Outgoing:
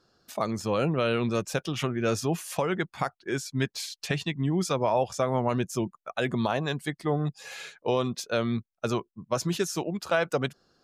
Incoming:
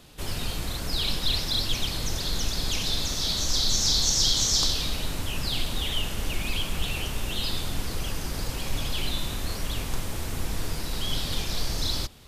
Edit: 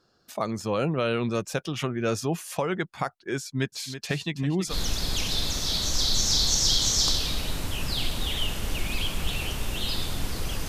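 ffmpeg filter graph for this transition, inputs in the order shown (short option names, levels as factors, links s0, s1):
-filter_complex "[0:a]asplit=3[s0][s1][s2];[s0]afade=t=out:st=3.72:d=0.02[s3];[s1]aecho=1:1:327:0.282,afade=t=in:st=3.72:d=0.02,afade=t=out:st=4.75:d=0.02[s4];[s2]afade=t=in:st=4.75:d=0.02[s5];[s3][s4][s5]amix=inputs=3:normalize=0,apad=whole_dur=10.68,atrim=end=10.68,atrim=end=4.75,asetpts=PTS-STARTPTS[s6];[1:a]atrim=start=2.22:end=8.23,asetpts=PTS-STARTPTS[s7];[s6][s7]acrossfade=d=0.08:c1=tri:c2=tri"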